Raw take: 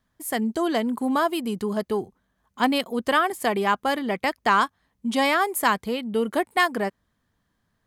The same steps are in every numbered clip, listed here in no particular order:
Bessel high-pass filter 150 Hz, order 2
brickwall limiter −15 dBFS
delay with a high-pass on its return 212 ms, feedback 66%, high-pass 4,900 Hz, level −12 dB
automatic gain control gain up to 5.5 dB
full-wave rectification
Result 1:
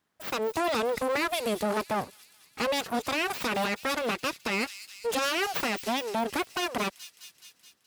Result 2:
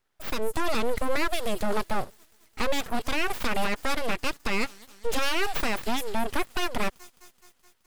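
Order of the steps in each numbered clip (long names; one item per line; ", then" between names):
full-wave rectification, then delay with a high-pass on its return, then automatic gain control, then brickwall limiter, then Bessel high-pass filter
automatic gain control, then delay with a high-pass on its return, then brickwall limiter, then Bessel high-pass filter, then full-wave rectification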